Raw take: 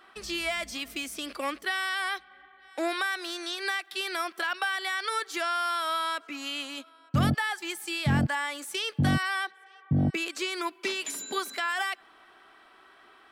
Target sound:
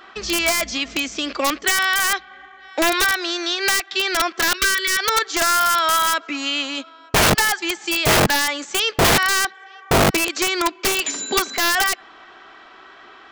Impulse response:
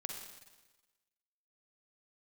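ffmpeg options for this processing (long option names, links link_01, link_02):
-filter_complex "[0:a]asplit=2[link_01][link_02];[link_02]acrusher=bits=4:mode=log:mix=0:aa=0.000001,volume=-3dB[link_03];[link_01][link_03]amix=inputs=2:normalize=0,aresample=16000,aresample=44100,aeval=exprs='(mod(7.08*val(0)+1,2)-1)/7.08':channel_layout=same,asplit=3[link_04][link_05][link_06];[link_04]afade=type=out:start_time=4.56:duration=0.02[link_07];[link_05]asuperstop=centerf=840:order=12:qfactor=1.5,afade=type=in:start_time=4.56:duration=0.02,afade=type=out:start_time=4.98:duration=0.02[link_08];[link_06]afade=type=in:start_time=4.98:duration=0.02[link_09];[link_07][link_08][link_09]amix=inputs=3:normalize=0,volume=7dB"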